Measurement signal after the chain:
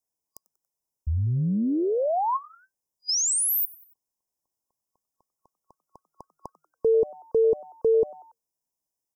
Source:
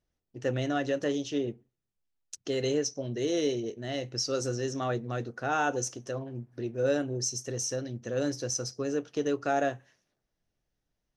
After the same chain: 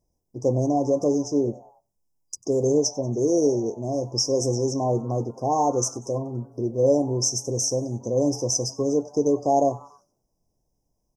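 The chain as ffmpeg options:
-filter_complex "[0:a]afftfilt=real='re*(1-between(b*sr/4096,1100,4900))':imag='im*(1-between(b*sr/4096,1100,4900))':win_size=4096:overlap=0.75,asplit=4[a][b][c][d];[b]adelay=94,afreqshift=150,volume=-22.5dB[e];[c]adelay=188,afreqshift=300,volume=-28.3dB[f];[d]adelay=282,afreqshift=450,volume=-34.2dB[g];[a][e][f][g]amix=inputs=4:normalize=0,volume=8dB"

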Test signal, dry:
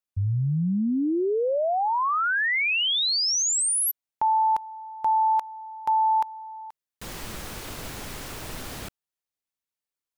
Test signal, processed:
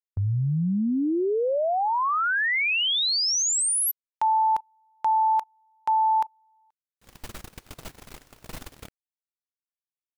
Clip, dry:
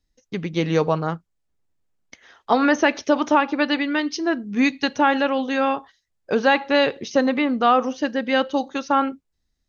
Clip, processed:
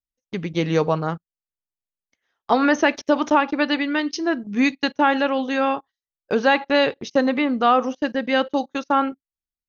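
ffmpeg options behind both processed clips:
-af "agate=range=-24dB:threshold=-35dB:ratio=16:release=43:detection=rms"

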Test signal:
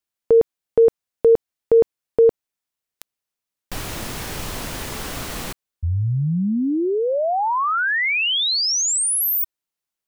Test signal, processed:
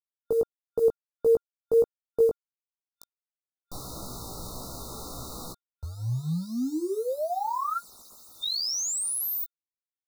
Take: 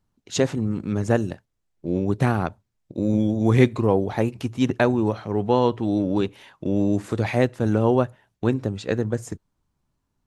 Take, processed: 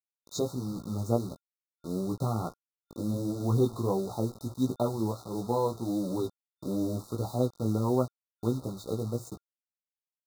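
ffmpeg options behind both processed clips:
-af "acrusher=bits=5:mix=0:aa=0.000001,flanger=delay=15.5:depth=2.8:speed=1.5,afftfilt=real='re*(1-between(b*sr/4096,1400,3600))':imag='im*(1-between(b*sr/4096,1400,3600))':win_size=4096:overlap=0.75,volume=-6dB"

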